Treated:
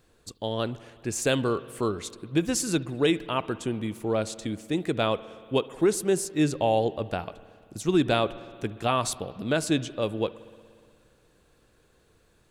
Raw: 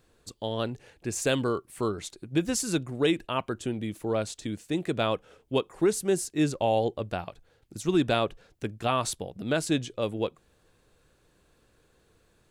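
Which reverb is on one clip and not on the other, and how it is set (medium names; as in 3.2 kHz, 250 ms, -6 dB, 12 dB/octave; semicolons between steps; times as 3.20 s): spring tank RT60 2.2 s, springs 59 ms, chirp 20 ms, DRR 16.5 dB; trim +1.5 dB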